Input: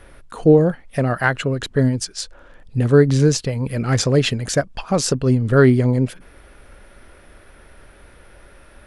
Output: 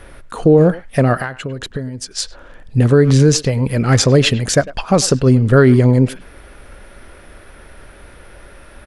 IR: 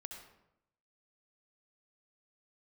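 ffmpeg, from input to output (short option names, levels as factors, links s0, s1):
-filter_complex "[0:a]asettb=1/sr,asplit=3[s0][s1][s2];[s0]atrim=end=1.164[s3];[s1]atrim=start=1.16:end=2.11,asetpts=PTS-STARTPTS,afade=t=in:d=0.004:c=qsin,afade=t=out:st=0.946:d=0.004:c=qsin,acompressor=threshold=0.0447:ratio=16[s4];[s2]atrim=start=2.106[s5];[s3][s4]acrossfade=d=0.004:c1=hsin:c2=qsin[s6];[s6][s5]acrossfade=d=0.004:c1=qsin:c2=hsin,asplit=2[s7][s8];[s8]adelay=100,highpass=300,lowpass=3400,asoftclip=type=hard:threshold=0.251,volume=0.141[s9];[s7][s9]amix=inputs=2:normalize=0,alimiter=level_in=2.24:limit=0.891:release=50:level=0:latency=1,volume=0.891"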